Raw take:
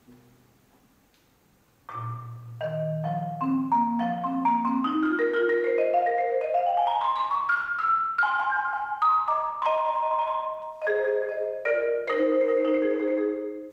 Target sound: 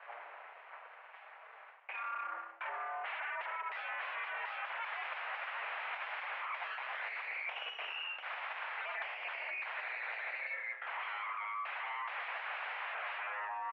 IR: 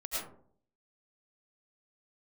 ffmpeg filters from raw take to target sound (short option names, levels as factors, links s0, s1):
-af "aecho=1:1:5.7:0.96,aeval=exprs='0.0501*(abs(mod(val(0)/0.0501+3,4)-2)-1)':c=same,acontrast=87,aeval=exprs='abs(val(0))':c=same,highpass=f=590:t=q:w=0.5412,highpass=f=590:t=q:w=1.307,lowpass=f=2400:t=q:w=0.5176,lowpass=f=2400:t=q:w=0.7071,lowpass=f=2400:t=q:w=1.932,afreqshift=97,areverse,acompressor=threshold=0.00447:ratio=6,areverse,volume=2.37"